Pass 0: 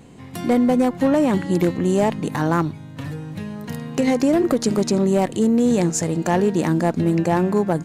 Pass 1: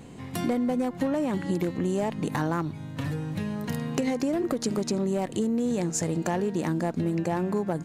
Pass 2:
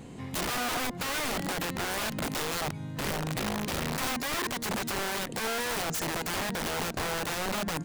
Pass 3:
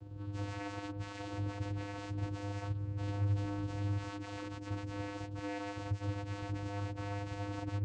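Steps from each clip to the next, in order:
compressor 6:1, threshold -24 dBFS, peak gain reduction 10 dB
wrapped overs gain 26 dB
inharmonic rescaling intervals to 116%; vocoder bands 8, square 101 Hz; gain -1 dB

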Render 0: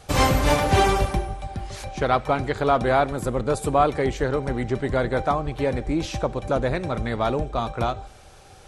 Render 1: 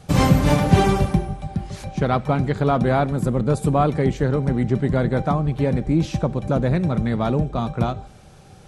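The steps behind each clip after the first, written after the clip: bell 170 Hz +15 dB 1.4 oct; gain -2.5 dB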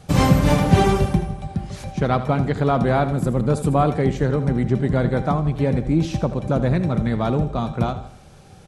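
feedback echo 80 ms, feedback 41%, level -13 dB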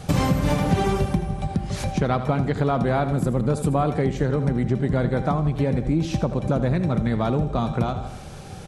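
compressor 3:1, threshold -30 dBFS, peak gain reduction 16 dB; gain +8 dB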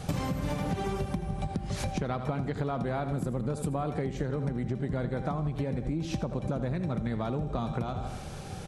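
compressor, threshold -26 dBFS, peak gain reduction 11.5 dB; gain -2 dB

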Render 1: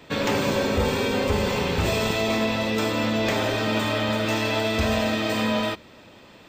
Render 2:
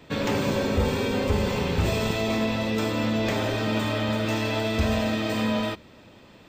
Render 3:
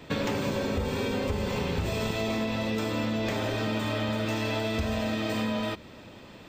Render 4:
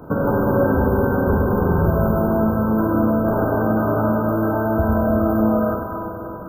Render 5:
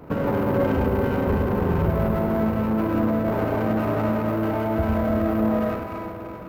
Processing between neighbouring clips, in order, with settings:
low shelf 300 Hz +6 dB; gain -4 dB
compressor, threshold -29 dBFS, peak gain reduction 11 dB; gain +3 dB
FFT band-reject 1600–11000 Hz; Schroeder reverb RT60 3.3 s, combs from 33 ms, DRR -1 dB; gain +9 dB
running maximum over 9 samples; gain -4 dB

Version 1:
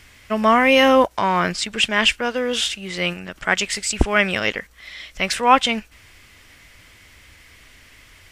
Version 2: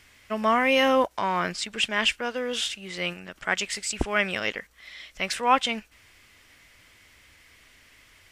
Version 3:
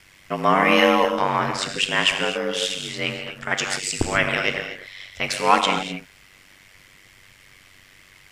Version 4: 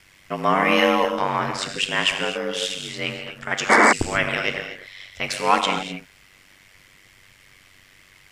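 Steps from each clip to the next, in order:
low shelf 150 Hz -6 dB; gain -6.5 dB
non-linear reverb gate 0.28 s flat, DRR 3.5 dB; ring modulator 48 Hz; gain +6 dB
painted sound noise, 3.69–3.93, 200–2300 Hz -12 dBFS; gain -1.5 dB

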